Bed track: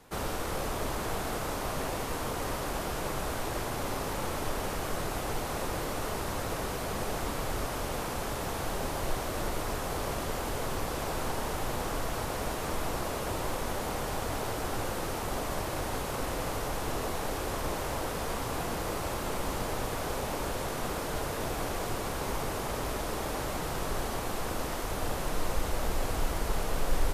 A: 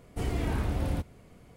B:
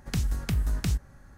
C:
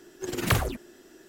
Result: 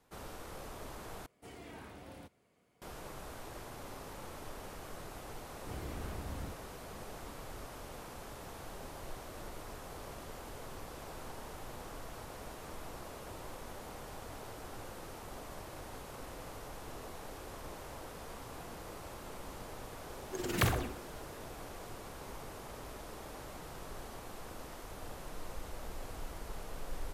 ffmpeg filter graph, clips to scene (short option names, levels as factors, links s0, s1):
-filter_complex "[1:a]asplit=2[s0][s1];[0:a]volume=0.211[s2];[s0]highpass=f=430:p=1[s3];[3:a]asplit=2[s4][s5];[s5]adelay=63,lowpass=f=4200:p=1,volume=0.376,asplit=2[s6][s7];[s7]adelay=63,lowpass=f=4200:p=1,volume=0.54,asplit=2[s8][s9];[s9]adelay=63,lowpass=f=4200:p=1,volume=0.54,asplit=2[s10][s11];[s11]adelay=63,lowpass=f=4200:p=1,volume=0.54,asplit=2[s12][s13];[s13]adelay=63,lowpass=f=4200:p=1,volume=0.54,asplit=2[s14][s15];[s15]adelay=63,lowpass=f=4200:p=1,volume=0.54[s16];[s4][s6][s8][s10][s12][s14][s16]amix=inputs=7:normalize=0[s17];[s2]asplit=2[s18][s19];[s18]atrim=end=1.264[s20];[s3]atrim=end=1.56,asetpts=PTS-STARTPTS,volume=0.237[s21];[s19]atrim=start=2.816[s22];[s1]atrim=end=1.56,asetpts=PTS-STARTPTS,volume=0.211,afade=t=in:d=0.004:c=hsin,afade=t=out:st=1.556:d=0.004:c=hsin,adelay=5500[s23];[s17]atrim=end=1.28,asetpts=PTS-STARTPTS,volume=0.473,afade=t=in:d=0.004:c=hsin,afade=t=out:st=1.276:d=0.004:c=hsin,adelay=20110[s24];[s20][s21]acrossfade=d=0.004:c1=hsin:c2=hsin[s25];[s25][s22]acrossfade=d=0.004:c1=hsin:c2=hsin[s26];[s26][s23][s24]amix=inputs=3:normalize=0"